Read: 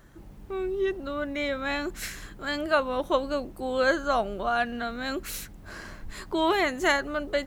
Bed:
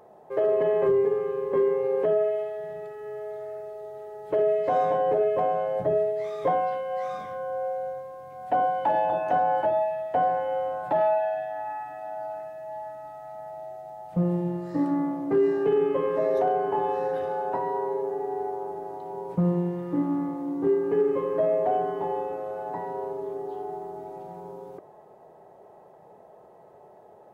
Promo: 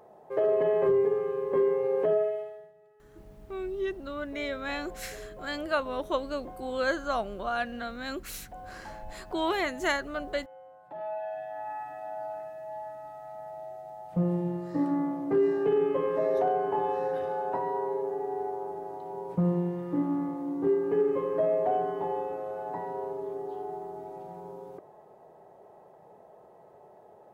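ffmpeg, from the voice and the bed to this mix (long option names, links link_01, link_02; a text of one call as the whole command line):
ffmpeg -i stem1.wav -i stem2.wav -filter_complex "[0:a]adelay=3000,volume=-4.5dB[link_01];[1:a]volume=17.5dB,afade=type=out:start_time=2.15:duration=0.57:silence=0.1,afade=type=in:start_time=10.88:duration=0.94:silence=0.105925[link_02];[link_01][link_02]amix=inputs=2:normalize=0" out.wav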